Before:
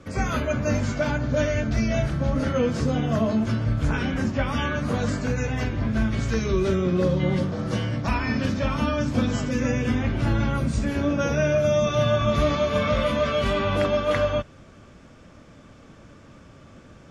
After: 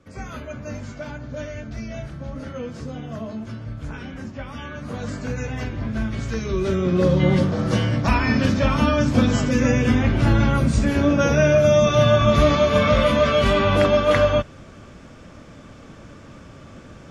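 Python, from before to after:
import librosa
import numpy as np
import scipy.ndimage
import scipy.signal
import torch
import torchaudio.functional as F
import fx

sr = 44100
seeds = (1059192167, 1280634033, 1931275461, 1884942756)

y = fx.gain(x, sr, db=fx.line((4.62, -9.0), (5.32, -2.0), (6.44, -2.0), (7.21, 5.5)))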